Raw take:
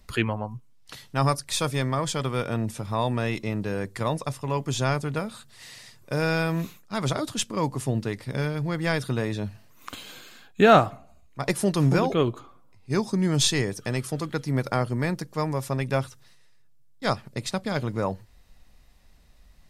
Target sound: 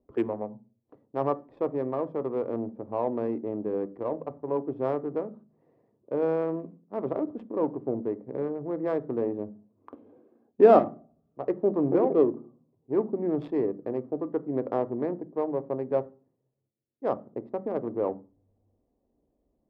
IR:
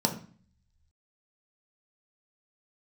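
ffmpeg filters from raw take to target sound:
-filter_complex "[0:a]adynamicsmooth=sensitivity=1:basefreq=500,asettb=1/sr,asplit=3[link_01][link_02][link_03];[link_01]atrim=end=3.934[link_04];[link_02]atrim=start=3.93:end=4.45,asetpts=PTS-STARTPTS,afade=type=in:duration=0.004:curve=qsin,afade=type=out:start_time=0.516:duration=0.004:curve=qsin,tremolo=f=120:d=0.4[link_05];[link_03]atrim=start=4.446[link_06];[link_04][link_05]acrossfade=duration=0.004:curve1=hsin:curve2=qsin[link_07];[link_07][link_06]acrossfade=duration=0.004:curve1=qsin:curve2=hsin,asettb=1/sr,asplit=3[link_08][link_09][link_10];[link_08]atrim=end=10.794[link_11];[link_09]atrim=start=10.79:end=11.55,asetpts=PTS-STARTPTS,afade=type=in:duration=0.004:curve=qsin,afade=type=out:start_time=0.756:duration=0.004:curve=qsin,aeval=exprs='clip(val(0),-1,0.0708)':channel_layout=same[link_12];[link_10]atrim=start=11.546[link_13];[link_11][link_12]acrossfade=duration=0.004:curve1=hsin:curve2=qsin[link_14];[link_14][link_13]acrossfade=duration=0.004:curve1=qsin:curve2=hsin,bandpass=frequency=460:width_type=q:width=1.4:csg=0,asplit=2[link_15][link_16];[1:a]atrim=start_sample=2205,asetrate=57330,aresample=44100[link_17];[link_16][link_17]afir=irnorm=-1:irlink=0,volume=-16dB[link_18];[link_15][link_18]amix=inputs=2:normalize=0"

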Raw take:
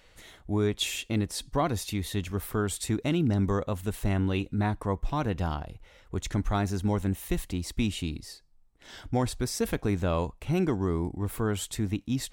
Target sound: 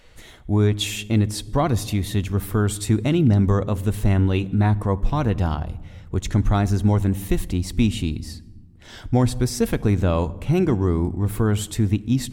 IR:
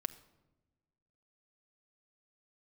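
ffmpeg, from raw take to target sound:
-filter_complex "[0:a]asplit=2[link_01][link_02];[1:a]atrim=start_sample=2205,asetrate=29106,aresample=44100,lowshelf=frequency=420:gain=10[link_03];[link_02][link_03]afir=irnorm=-1:irlink=0,volume=-5dB[link_04];[link_01][link_04]amix=inputs=2:normalize=0"

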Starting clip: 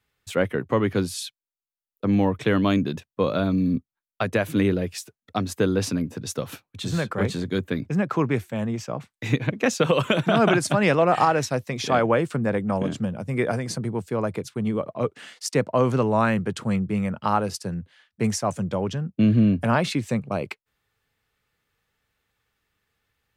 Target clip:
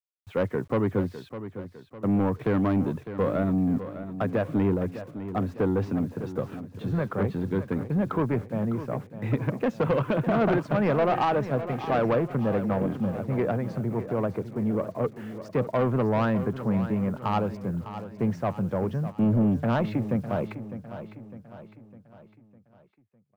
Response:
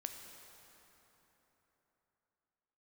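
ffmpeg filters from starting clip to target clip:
-af "lowpass=1300,acrusher=bits=9:mix=0:aa=0.000001,asoftclip=type=tanh:threshold=-18dB,aecho=1:1:605|1210|1815|2420|3025:0.251|0.121|0.0579|0.0278|0.0133"

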